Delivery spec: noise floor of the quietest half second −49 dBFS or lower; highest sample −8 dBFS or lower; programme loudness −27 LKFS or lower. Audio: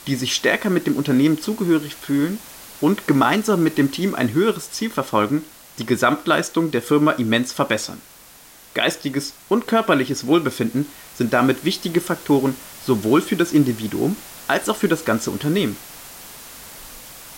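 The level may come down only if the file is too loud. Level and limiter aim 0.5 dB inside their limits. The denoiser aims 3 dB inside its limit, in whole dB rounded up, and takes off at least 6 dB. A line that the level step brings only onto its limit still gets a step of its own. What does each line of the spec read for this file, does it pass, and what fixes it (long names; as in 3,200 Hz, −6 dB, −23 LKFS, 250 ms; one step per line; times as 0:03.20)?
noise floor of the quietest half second −46 dBFS: out of spec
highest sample −5.0 dBFS: out of spec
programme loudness −20.0 LKFS: out of spec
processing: level −7.5 dB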